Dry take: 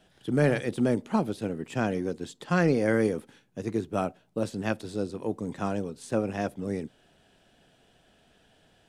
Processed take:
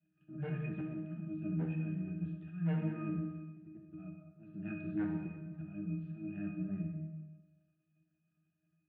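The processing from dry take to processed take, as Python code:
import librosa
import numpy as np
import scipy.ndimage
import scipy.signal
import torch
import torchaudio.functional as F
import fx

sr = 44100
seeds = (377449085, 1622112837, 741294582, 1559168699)

y = fx.band_shelf(x, sr, hz=680.0, db=-13.5, octaves=2.4)
y = fx.auto_swell(y, sr, attack_ms=412.0)
y = fx.leveller(y, sr, passes=3)
y = fx.rider(y, sr, range_db=4, speed_s=2.0)
y = fx.octave_resonator(y, sr, note='D#', decay_s=0.51)
y = 10.0 ** (-36.5 / 20.0) * (np.abs((y / 10.0 ** (-36.5 / 20.0) + 3.0) % 4.0 - 2.0) - 1.0)
y = fx.cabinet(y, sr, low_hz=120.0, low_slope=24, high_hz=2700.0, hz=(160.0, 550.0, 1100.0, 1600.0), db=(4, -5, -9, 9))
y = fx.rev_plate(y, sr, seeds[0], rt60_s=1.2, hf_ratio=0.95, predelay_ms=0, drr_db=1.0)
y = F.gain(torch.from_numpy(y), 6.5).numpy()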